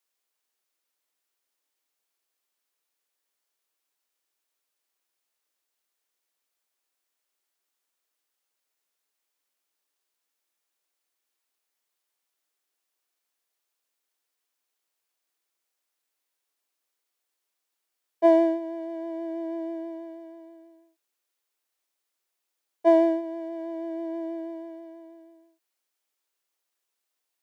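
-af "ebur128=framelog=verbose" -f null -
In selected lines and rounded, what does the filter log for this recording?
Integrated loudness:
  I:         -26.5 LUFS
  Threshold: -38.3 LUFS
Loudness range:
  LRA:        12.4 LU
  Threshold: -50.1 LUFS
  LRA low:   -40.5 LUFS
  LRA high:  -28.2 LUFS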